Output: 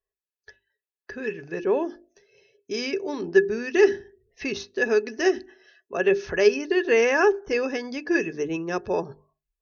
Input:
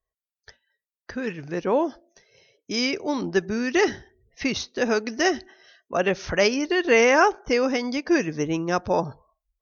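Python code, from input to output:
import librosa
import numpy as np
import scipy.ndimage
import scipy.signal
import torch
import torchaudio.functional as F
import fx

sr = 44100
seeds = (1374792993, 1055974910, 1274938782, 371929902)

y = fx.hum_notches(x, sr, base_hz=50, count=8)
y = fx.small_body(y, sr, hz=(400.0, 1700.0, 2600.0), ring_ms=70, db=16)
y = F.gain(torch.from_numpy(y), -6.5).numpy()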